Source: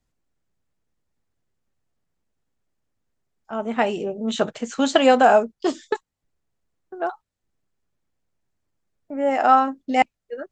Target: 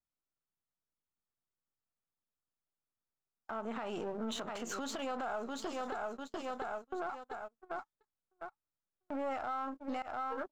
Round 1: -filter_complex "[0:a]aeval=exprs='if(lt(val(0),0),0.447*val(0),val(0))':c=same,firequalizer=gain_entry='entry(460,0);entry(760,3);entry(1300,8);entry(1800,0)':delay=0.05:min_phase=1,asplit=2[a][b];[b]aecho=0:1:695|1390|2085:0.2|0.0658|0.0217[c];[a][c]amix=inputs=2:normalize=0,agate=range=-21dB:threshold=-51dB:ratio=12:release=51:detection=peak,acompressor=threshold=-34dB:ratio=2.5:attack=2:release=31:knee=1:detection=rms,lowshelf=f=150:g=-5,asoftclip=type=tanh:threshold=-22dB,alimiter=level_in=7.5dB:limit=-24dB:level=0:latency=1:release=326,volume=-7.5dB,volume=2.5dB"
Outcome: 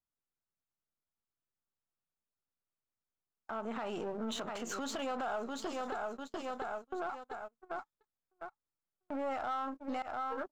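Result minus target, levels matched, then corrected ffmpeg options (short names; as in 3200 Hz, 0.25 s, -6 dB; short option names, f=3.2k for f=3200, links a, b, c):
soft clip: distortion +12 dB
-filter_complex "[0:a]aeval=exprs='if(lt(val(0),0),0.447*val(0),val(0))':c=same,firequalizer=gain_entry='entry(460,0);entry(760,3);entry(1300,8);entry(1800,0)':delay=0.05:min_phase=1,asplit=2[a][b];[b]aecho=0:1:695|1390|2085:0.2|0.0658|0.0217[c];[a][c]amix=inputs=2:normalize=0,agate=range=-21dB:threshold=-51dB:ratio=12:release=51:detection=peak,acompressor=threshold=-34dB:ratio=2.5:attack=2:release=31:knee=1:detection=rms,lowshelf=f=150:g=-5,asoftclip=type=tanh:threshold=-15dB,alimiter=level_in=7.5dB:limit=-24dB:level=0:latency=1:release=326,volume=-7.5dB,volume=2.5dB"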